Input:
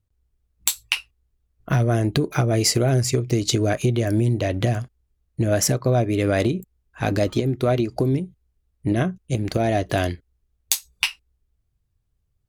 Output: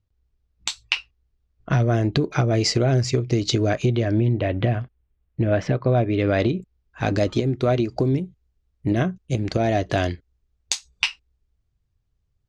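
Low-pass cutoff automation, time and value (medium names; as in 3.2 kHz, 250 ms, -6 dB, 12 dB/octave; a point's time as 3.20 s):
low-pass 24 dB/octave
3.83 s 5.9 kHz
4.34 s 3.3 kHz
5.72 s 3.3 kHz
7.11 s 6.9 kHz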